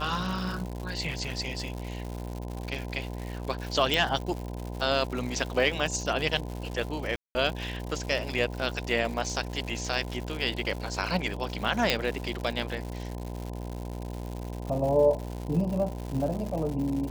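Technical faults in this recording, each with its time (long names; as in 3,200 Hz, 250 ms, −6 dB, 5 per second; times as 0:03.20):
mains buzz 60 Hz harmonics 17 −36 dBFS
surface crackle 200 per second −34 dBFS
0:03.94: click
0:07.16–0:07.35: drop-out 190 ms
0:11.90: click −8 dBFS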